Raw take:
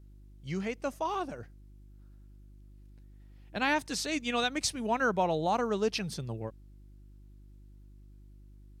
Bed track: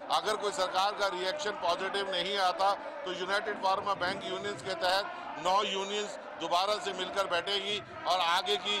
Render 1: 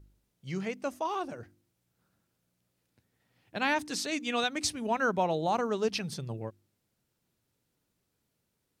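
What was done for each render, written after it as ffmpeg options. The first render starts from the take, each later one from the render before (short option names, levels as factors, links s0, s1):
-af "bandreject=f=50:t=h:w=4,bandreject=f=100:t=h:w=4,bandreject=f=150:t=h:w=4,bandreject=f=200:t=h:w=4,bandreject=f=250:t=h:w=4,bandreject=f=300:t=h:w=4,bandreject=f=350:t=h:w=4"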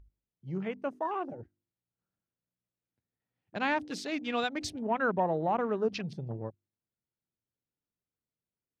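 -af "afwtdn=0.00708,lowpass=f=2400:p=1"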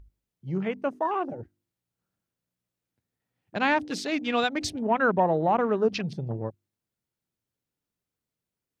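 -af "volume=2"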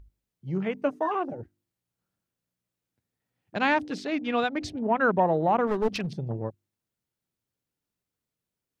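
-filter_complex "[0:a]asettb=1/sr,asplit=3[s0][s1][s2];[s0]atrim=end=0.744[s3];[s1]atrim=start=0.74:end=1.15,asetpts=PTS-STARTPTS,afade=t=in:d=0.004:c=qsin,afade=t=out:st=0.406:d=0.004:c=qsin,aecho=1:1:6.7:0.65,atrim=end_sample=18081[s4];[s2]atrim=start=1.146[s5];[s3][s4]acrossfade=d=0.004:c1=hsin:c2=qsin[s6];[s6][s5]acrossfade=d=0.004:c1=qsin:c2=hsin,asettb=1/sr,asplit=3[s7][s8][s9];[s7]atrim=end=3.904[s10];[s8]atrim=start=3.9:end=5.01,asetpts=PTS-STARTPTS,afade=t=in:d=0.004:c=qsin,afade=t=out:st=1.106:d=0.004:c=qsin,lowpass=f=2200:p=1[s11];[s9]atrim=start=5.006[s12];[s10][s11]acrossfade=d=0.004:c1=hsin:c2=qsin[s13];[s13][s12]acrossfade=d=0.004:c1=qsin:c2=hsin,asettb=1/sr,asplit=3[s14][s15][s16];[s14]atrim=end=5.674[s17];[s15]atrim=start=5.67:end=6.13,asetpts=PTS-STARTPTS,afade=t=in:d=0.004:c=qsin,afade=t=out:st=0.456:d=0.004:c=qsin,aeval=exprs='clip(val(0),-1,0.0422)':c=same[s18];[s16]atrim=start=6.126[s19];[s17][s18]acrossfade=d=0.004:c1=hsin:c2=qsin[s20];[s20][s19]acrossfade=d=0.004:c1=qsin:c2=hsin"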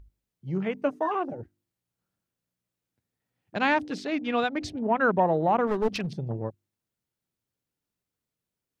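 -af anull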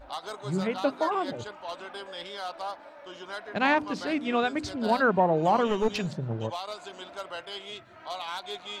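-filter_complex "[1:a]volume=0.422[s0];[0:a][s0]amix=inputs=2:normalize=0"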